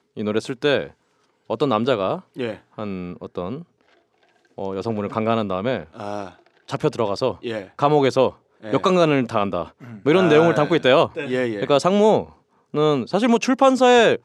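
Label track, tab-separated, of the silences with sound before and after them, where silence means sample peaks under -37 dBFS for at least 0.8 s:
3.630000	4.580000	silence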